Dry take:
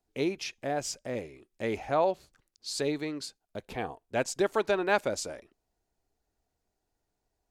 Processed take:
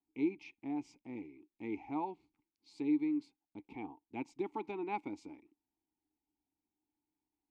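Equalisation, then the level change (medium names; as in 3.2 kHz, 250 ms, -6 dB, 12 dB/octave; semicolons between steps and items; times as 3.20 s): vowel filter u; bass shelf 170 Hz +11.5 dB; +1.0 dB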